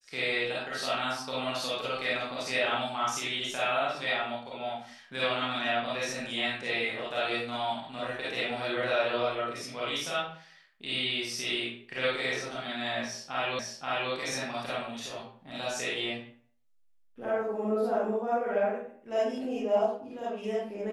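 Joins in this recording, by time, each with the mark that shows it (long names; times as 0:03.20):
0:13.59: the same again, the last 0.53 s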